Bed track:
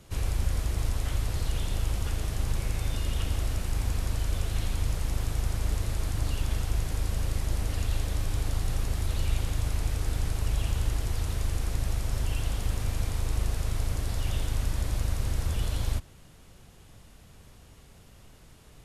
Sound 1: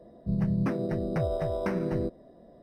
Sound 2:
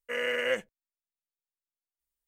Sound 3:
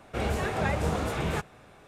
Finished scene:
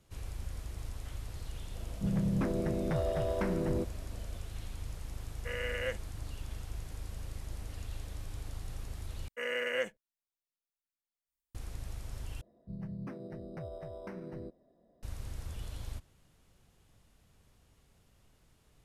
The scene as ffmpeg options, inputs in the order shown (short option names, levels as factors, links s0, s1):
-filter_complex "[1:a]asplit=2[s0][s1];[2:a]asplit=2[s2][s3];[0:a]volume=0.224[s4];[s0]asoftclip=type=tanh:threshold=0.0708[s5];[s4]asplit=3[s6][s7][s8];[s6]atrim=end=9.284[s9];[s3]atrim=end=2.27,asetpts=PTS-STARTPTS,volume=0.596[s10];[s7]atrim=start=11.546:end=12.414[s11];[s1]atrim=end=2.62,asetpts=PTS-STARTPTS,volume=0.188[s12];[s8]atrim=start=15.026[s13];[s5]atrim=end=2.62,asetpts=PTS-STARTPTS,volume=0.841,afade=t=in:d=0.004:c=hsin,afade=t=out:st=2.616:d=0.004:c=hsin,adelay=1750[s14];[s2]atrim=end=2.27,asetpts=PTS-STARTPTS,volume=0.422,afade=t=in:d=0.004:c=hsin,afade=t=out:st=2.266:d=0.004:c=hsin,adelay=5360[s15];[s9][s10]acrossfade=d=0.004:c1=hsin:c2=hsin[s16];[s16][s11]acrossfade=d=0.004:c1=hsin:c2=hsin[s17];[s17][s12]acrossfade=d=0.004:c1=hsin:c2=hsin[s18];[s18][s13]acrossfade=d=0.004:c1=hsin:c2=hsin[s19];[s19][s14][s15]amix=inputs=3:normalize=0"